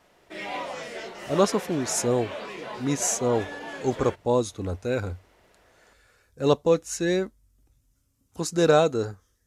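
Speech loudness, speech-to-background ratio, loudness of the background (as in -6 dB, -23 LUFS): -25.5 LUFS, 10.5 dB, -36.0 LUFS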